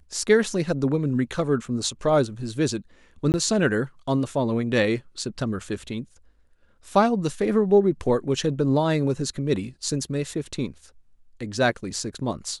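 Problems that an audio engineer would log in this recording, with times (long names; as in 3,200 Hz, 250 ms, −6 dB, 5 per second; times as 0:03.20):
0:03.32–0:03.34: drop-out 19 ms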